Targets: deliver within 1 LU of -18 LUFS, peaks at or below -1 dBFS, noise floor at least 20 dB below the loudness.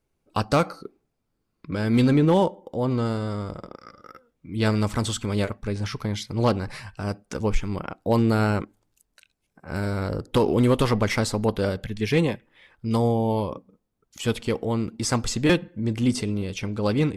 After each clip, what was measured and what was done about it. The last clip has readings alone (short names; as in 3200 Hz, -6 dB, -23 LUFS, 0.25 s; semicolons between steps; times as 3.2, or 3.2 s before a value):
clipped 0.3%; flat tops at -12.0 dBFS; loudness -25.0 LUFS; peak -12.0 dBFS; loudness target -18.0 LUFS
-> clip repair -12 dBFS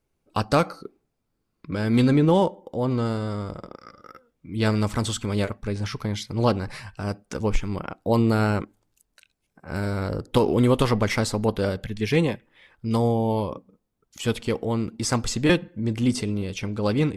clipped 0.0%; loudness -24.5 LUFS; peak -5.0 dBFS; loudness target -18.0 LUFS
-> gain +6.5 dB; limiter -1 dBFS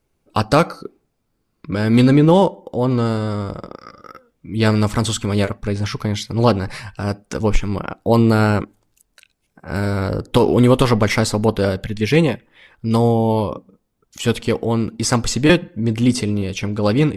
loudness -18.0 LUFS; peak -1.0 dBFS; noise floor -70 dBFS